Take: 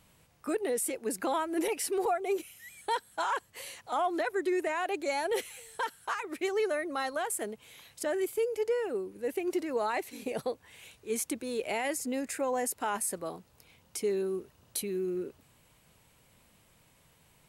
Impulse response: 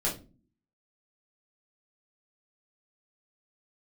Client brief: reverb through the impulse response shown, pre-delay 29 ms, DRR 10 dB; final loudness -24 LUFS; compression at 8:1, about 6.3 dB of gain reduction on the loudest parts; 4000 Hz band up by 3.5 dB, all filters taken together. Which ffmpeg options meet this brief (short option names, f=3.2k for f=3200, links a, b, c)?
-filter_complex "[0:a]equalizer=f=4k:t=o:g=4.5,acompressor=threshold=-32dB:ratio=8,asplit=2[a][b];[1:a]atrim=start_sample=2205,adelay=29[c];[b][c]afir=irnorm=-1:irlink=0,volume=-17dB[d];[a][d]amix=inputs=2:normalize=0,volume=12.5dB"